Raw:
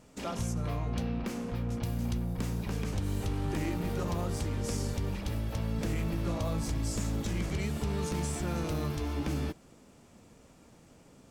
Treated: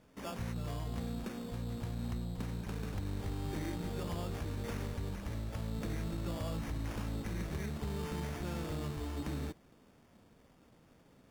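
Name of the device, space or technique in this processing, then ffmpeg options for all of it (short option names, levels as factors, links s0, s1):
crushed at another speed: -af "asetrate=22050,aresample=44100,acrusher=samples=22:mix=1:aa=0.000001,asetrate=88200,aresample=44100,volume=0.501"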